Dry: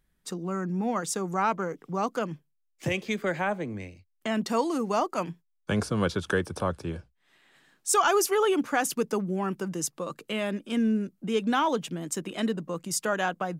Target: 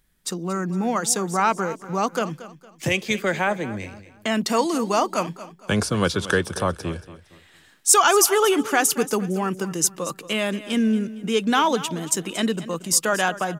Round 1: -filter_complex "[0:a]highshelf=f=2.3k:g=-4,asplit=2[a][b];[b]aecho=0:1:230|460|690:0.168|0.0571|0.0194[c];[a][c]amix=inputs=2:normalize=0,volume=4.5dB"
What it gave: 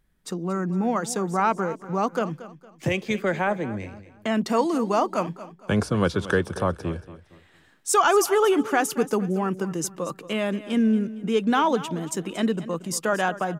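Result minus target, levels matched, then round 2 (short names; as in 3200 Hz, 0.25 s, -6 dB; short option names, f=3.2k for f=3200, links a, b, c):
4000 Hz band -5.5 dB
-filter_complex "[0:a]highshelf=f=2.3k:g=7,asplit=2[a][b];[b]aecho=0:1:230|460|690:0.168|0.0571|0.0194[c];[a][c]amix=inputs=2:normalize=0,volume=4.5dB"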